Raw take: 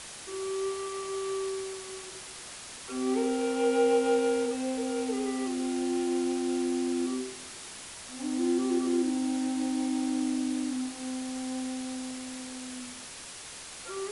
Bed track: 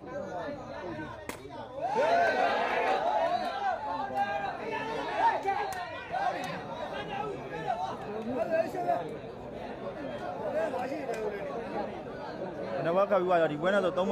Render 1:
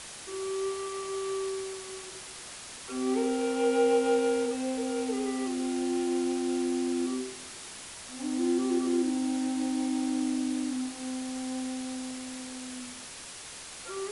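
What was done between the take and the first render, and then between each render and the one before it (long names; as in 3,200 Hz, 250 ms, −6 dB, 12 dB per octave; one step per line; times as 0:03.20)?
no processing that can be heard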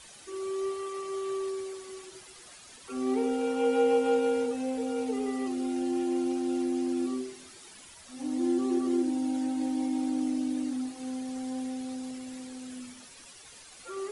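broadband denoise 11 dB, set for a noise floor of −44 dBFS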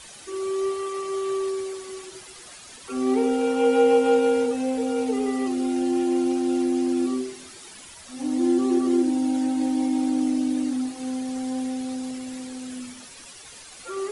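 level +6.5 dB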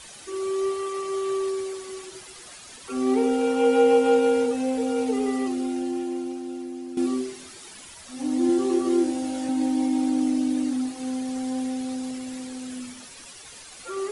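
0:05.35–0:06.97: fade out quadratic, to −12.5 dB
0:08.47–0:09.49: double-tracking delay 21 ms −4.5 dB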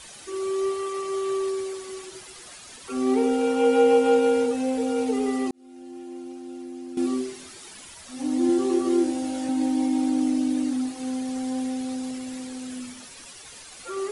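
0:05.51–0:07.13: fade in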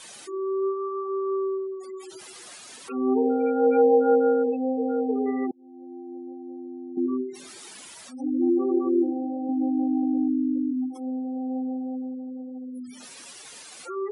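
gate on every frequency bin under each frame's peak −20 dB strong
high-pass filter 180 Hz 12 dB per octave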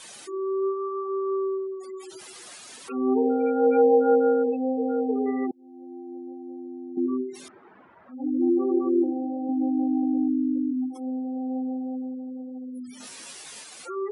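0:07.48–0:09.04: low-pass filter 1,500 Hz 24 dB per octave
0:12.98–0:13.64: double-tracking delay 19 ms −2.5 dB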